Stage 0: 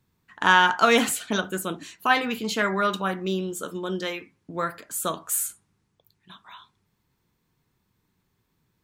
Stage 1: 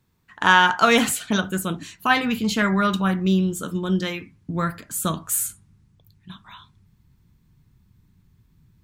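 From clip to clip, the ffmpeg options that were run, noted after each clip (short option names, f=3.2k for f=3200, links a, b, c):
-af "asubboost=boost=7.5:cutoff=180,volume=2.5dB"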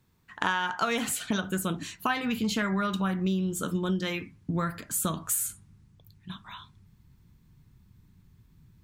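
-af "acompressor=threshold=-25dB:ratio=6"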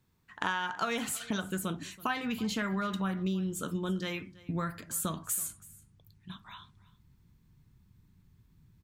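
-af "aecho=1:1:328:0.0891,volume=-4.5dB"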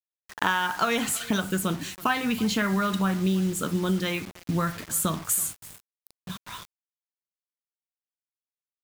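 -af "acrusher=bits=7:mix=0:aa=0.000001,volume=7.5dB"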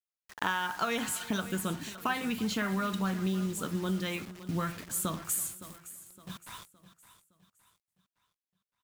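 -af "aecho=1:1:564|1128|1692|2256:0.168|0.0688|0.0282|0.0116,volume=-6.5dB"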